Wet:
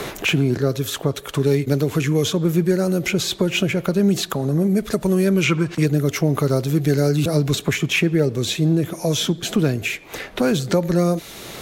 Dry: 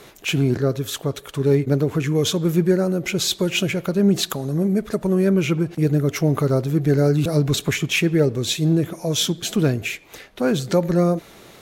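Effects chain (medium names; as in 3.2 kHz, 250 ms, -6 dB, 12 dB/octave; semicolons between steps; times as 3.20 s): time-frequency box 5.43–5.86 s, 920–9100 Hz +8 dB; three bands compressed up and down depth 70%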